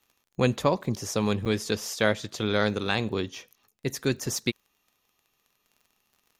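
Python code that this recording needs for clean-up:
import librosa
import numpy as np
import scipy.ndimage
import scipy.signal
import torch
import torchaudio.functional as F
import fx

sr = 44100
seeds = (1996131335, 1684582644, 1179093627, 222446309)

y = fx.fix_declick_ar(x, sr, threshold=6.5)
y = fx.fix_interpolate(y, sr, at_s=(1.45,), length_ms=8.2)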